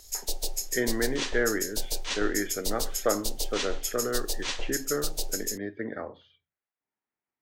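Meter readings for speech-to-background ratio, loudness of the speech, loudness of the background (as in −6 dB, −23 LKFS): 0.0 dB, −32.0 LKFS, −32.0 LKFS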